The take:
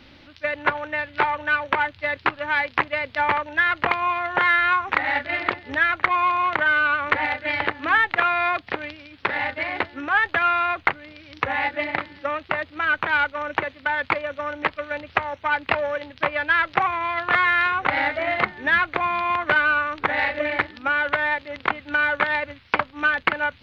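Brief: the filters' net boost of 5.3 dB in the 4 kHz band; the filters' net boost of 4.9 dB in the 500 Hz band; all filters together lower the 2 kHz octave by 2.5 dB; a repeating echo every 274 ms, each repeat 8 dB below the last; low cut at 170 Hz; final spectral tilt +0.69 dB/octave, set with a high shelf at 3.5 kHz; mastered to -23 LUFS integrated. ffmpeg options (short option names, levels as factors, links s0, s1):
-af "highpass=170,equalizer=f=500:t=o:g=6.5,equalizer=f=2000:t=o:g=-7,highshelf=f=3500:g=8.5,equalizer=f=4000:t=o:g=5,aecho=1:1:274|548|822|1096|1370:0.398|0.159|0.0637|0.0255|0.0102,volume=0.891"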